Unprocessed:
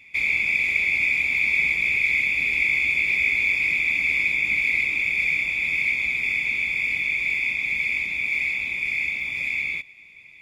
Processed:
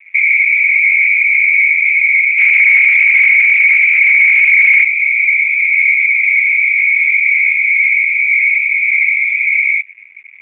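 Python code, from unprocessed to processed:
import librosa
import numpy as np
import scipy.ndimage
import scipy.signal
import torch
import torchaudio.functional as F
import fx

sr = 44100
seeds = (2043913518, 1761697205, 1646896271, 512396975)

y = fx.envelope_sharpen(x, sr, power=1.5)
y = scipy.signal.sosfilt(scipy.signal.butter(4, 300.0, 'highpass', fs=sr, output='sos'), y)
y = fx.leveller(y, sr, passes=5, at=(2.38, 4.84))
y = fx.rider(y, sr, range_db=3, speed_s=2.0)
y = fx.leveller(y, sr, passes=3)
y = fx.quant_dither(y, sr, seeds[0], bits=8, dither='none')
y = fx.ladder_lowpass(y, sr, hz=2300.0, resonance_pct=80)
y = fx.echo_bbd(y, sr, ms=364, stages=2048, feedback_pct=81, wet_db=-18)
y = y * librosa.db_to_amplitude(-1.0)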